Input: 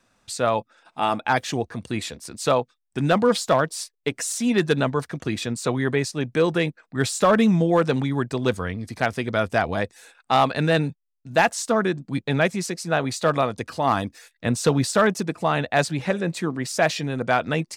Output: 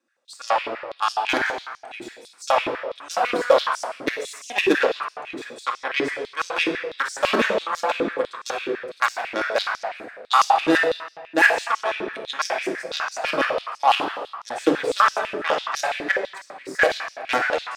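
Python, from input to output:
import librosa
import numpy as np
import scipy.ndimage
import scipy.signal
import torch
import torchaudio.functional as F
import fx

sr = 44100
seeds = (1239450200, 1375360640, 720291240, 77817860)

p1 = fx.level_steps(x, sr, step_db=11)
p2 = x + (p1 * librosa.db_to_amplitude(-2.0))
p3 = fx.cheby_harmonics(p2, sr, harmonics=(3,), levels_db=(-11,), full_scale_db=-5.0)
p4 = fx.dmg_noise_colour(p3, sr, seeds[0], colour='brown', level_db=-45.0, at=(10.37, 10.85), fade=0.02)
p5 = fx.room_shoebox(p4, sr, seeds[1], volume_m3=1800.0, walls='mixed', distance_m=2.3)
p6 = fx.filter_held_highpass(p5, sr, hz=12.0, low_hz=330.0, high_hz=5700.0)
y = p6 * librosa.db_to_amplitude(-4.5)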